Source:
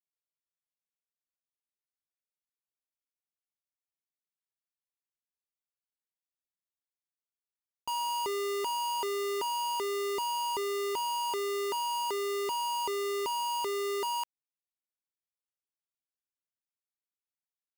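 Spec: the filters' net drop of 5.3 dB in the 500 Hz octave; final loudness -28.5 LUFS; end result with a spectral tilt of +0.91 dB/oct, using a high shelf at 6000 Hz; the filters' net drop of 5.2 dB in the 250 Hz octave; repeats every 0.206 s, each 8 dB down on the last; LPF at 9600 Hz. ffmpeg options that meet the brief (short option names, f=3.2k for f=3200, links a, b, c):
-af "lowpass=9.6k,equalizer=f=250:t=o:g=-4,equalizer=f=500:t=o:g=-5.5,highshelf=f=6k:g=3,aecho=1:1:206|412|618|824|1030:0.398|0.159|0.0637|0.0255|0.0102,volume=4.5dB"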